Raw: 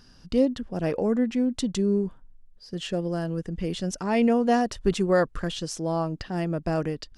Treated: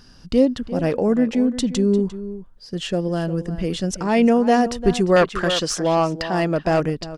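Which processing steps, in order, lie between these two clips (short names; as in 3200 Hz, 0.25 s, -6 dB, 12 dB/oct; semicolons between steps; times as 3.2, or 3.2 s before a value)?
outdoor echo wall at 60 m, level -13 dB; 5.16–6.8 overdrive pedal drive 14 dB, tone 4900 Hz, clips at -13 dBFS; gain +5.5 dB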